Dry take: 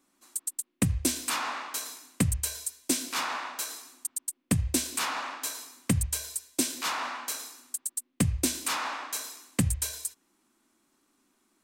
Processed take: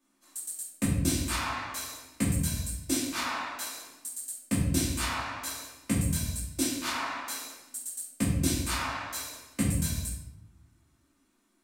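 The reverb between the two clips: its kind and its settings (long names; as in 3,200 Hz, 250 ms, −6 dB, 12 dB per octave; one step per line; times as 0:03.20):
rectangular room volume 240 cubic metres, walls mixed, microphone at 2.6 metres
level −9 dB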